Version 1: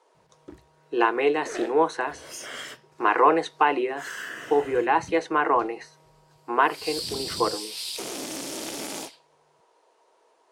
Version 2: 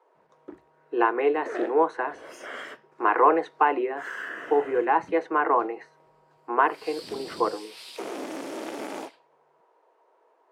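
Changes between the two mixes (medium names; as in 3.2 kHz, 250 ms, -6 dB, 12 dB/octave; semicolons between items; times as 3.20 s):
background +3.0 dB; master: add three-band isolator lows -19 dB, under 220 Hz, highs -17 dB, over 2.2 kHz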